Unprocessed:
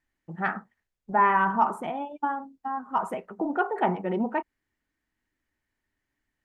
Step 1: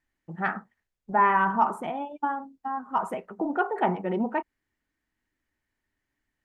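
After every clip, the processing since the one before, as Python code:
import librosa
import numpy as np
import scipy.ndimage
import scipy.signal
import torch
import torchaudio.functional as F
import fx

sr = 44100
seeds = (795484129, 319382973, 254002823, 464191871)

y = x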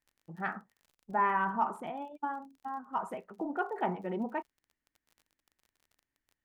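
y = fx.dmg_crackle(x, sr, seeds[0], per_s=33.0, level_db=-42.0)
y = y * librosa.db_to_amplitude(-7.5)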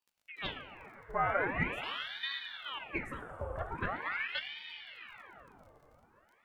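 y = fx.notch_comb(x, sr, f0_hz=720.0)
y = fx.rev_plate(y, sr, seeds[1], rt60_s=4.8, hf_ratio=0.8, predelay_ms=0, drr_db=5.5)
y = fx.ring_lfo(y, sr, carrier_hz=1500.0, swing_pct=85, hz=0.43)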